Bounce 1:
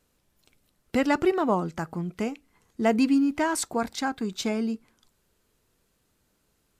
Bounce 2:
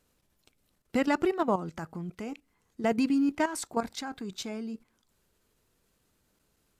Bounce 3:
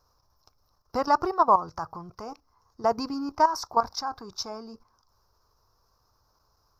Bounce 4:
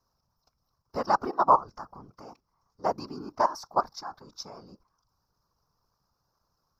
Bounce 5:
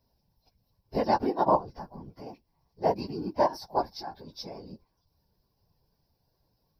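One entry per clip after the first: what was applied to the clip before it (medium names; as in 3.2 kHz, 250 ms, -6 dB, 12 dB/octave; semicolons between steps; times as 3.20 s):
level held to a coarse grid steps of 12 dB
FFT filter 110 Hz 0 dB, 180 Hz -14 dB, 270 Hz -13 dB, 670 Hz -1 dB, 1.1 kHz +9 dB, 2 kHz -17 dB, 3.2 kHz -20 dB, 5.4 kHz +8 dB, 8.3 kHz -27 dB, 14 kHz -4 dB; trim +6 dB
whisper effect; upward expansion 1.5:1, over -30 dBFS
phase randomisation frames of 50 ms; static phaser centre 3 kHz, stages 4; trim +6.5 dB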